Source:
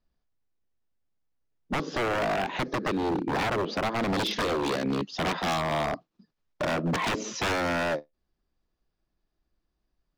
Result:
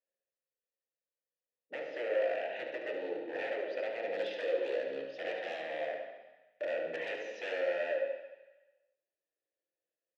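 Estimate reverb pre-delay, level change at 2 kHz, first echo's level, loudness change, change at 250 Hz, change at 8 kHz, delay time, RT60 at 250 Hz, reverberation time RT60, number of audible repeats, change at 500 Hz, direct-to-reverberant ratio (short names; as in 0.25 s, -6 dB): 3 ms, -8.5 dB, -8.0 dB, -8.0 dB, -19.0 dB, under -25 dB, 72 ms, 0.95 s, 1.1 s, 1, -3.0 dB, 0.5 dB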